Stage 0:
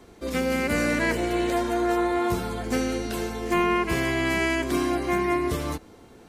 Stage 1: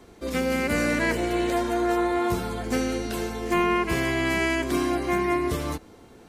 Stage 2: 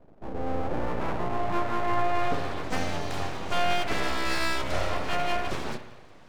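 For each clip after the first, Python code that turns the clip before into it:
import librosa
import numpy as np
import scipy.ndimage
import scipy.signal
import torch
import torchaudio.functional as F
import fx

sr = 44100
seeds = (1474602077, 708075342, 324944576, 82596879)

y1 = x
y2 = fx.filter_sweep_lowpass(y1, sr, from_hz=340.0, to_hz=5100.0, start_s=0.37, end_s=2.72, q=0.85)
y2 = fx.rev_spring(y2, sr, rt60_s=1.2, pass_ms=(57,), chirp_ms=25, drr_db=9.0)
y2 = np.abs(y2)
y2 = y2 * 10.0 ** (-1.0 / 20.0)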